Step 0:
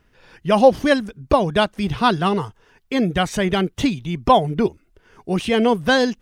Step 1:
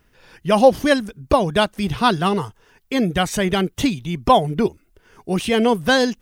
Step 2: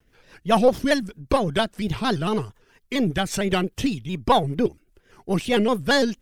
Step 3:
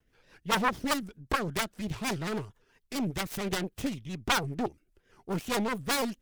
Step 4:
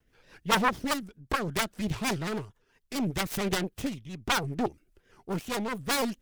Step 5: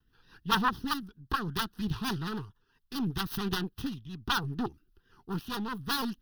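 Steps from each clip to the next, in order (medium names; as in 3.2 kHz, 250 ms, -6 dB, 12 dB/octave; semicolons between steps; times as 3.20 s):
treble shelf 8.5 kHz +11 dB
partial rectifier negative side -3 dB; rotary cabinet horn 5 Hz; vibrato with a chosen wave square 4.4 Hz, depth 100 cents
self-modulated delay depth 0.92 ms; trim -8.5 dB
tremolo triangle 0.67 Hz, depth 55%; trim +4 dB
static phaser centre 2.2 kHz, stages 6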